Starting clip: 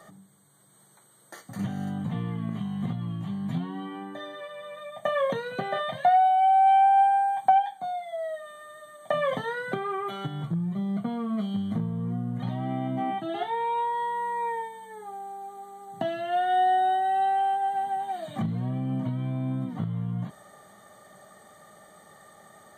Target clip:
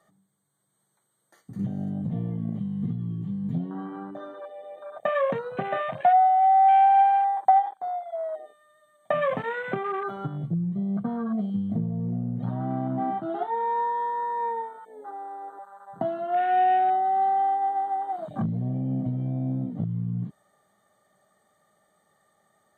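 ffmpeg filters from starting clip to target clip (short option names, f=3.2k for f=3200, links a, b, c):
-af "afwtdn=0.0178,volume=1.5dB"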